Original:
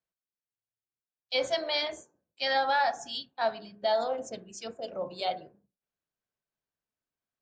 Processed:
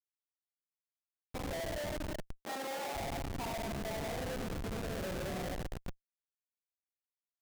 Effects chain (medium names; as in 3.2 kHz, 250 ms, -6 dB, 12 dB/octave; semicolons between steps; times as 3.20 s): random holes in the spectrogram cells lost 21%; Bessel low-pass 940 Hz, order 4; simulated room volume 900 m³, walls mixed, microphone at 9.8 m; peak limiter -13 dBFS, peak gain reduction 10 dB; compression 2.5:1, threshold -39 dBFS, peak gain reduction 14.5 dB; feedback delay 87 ms, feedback 59%, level -19.5 dB; Schmitt trigger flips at -35 dBFS; 2.44–2.95 s: high-pass 320 Hz 12 dB/octave